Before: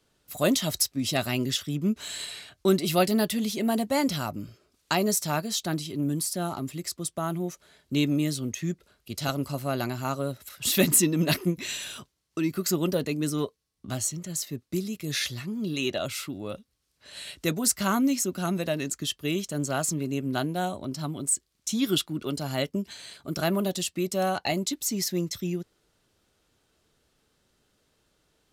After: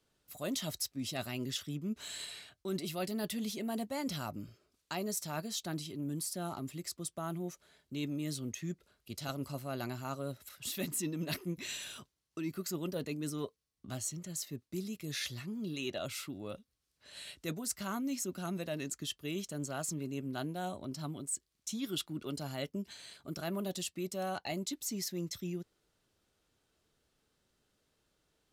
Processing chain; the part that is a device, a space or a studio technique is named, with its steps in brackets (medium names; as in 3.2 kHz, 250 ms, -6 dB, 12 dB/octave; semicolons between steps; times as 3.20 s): compression on the reversed sound (reverse; compression 6:1, threshold -26 dBFS, peak gain reduction 10.5 dB; reverse); trim -7.5 dB